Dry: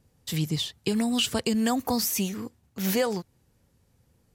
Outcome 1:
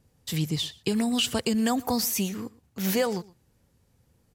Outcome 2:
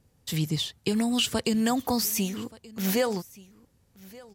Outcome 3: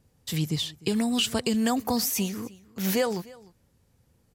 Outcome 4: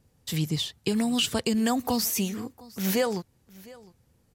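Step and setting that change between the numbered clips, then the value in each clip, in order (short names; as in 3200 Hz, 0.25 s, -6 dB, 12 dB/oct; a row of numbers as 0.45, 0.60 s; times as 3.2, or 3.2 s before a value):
echo, time: 0.118, 1.177, 0.302, 0.707 s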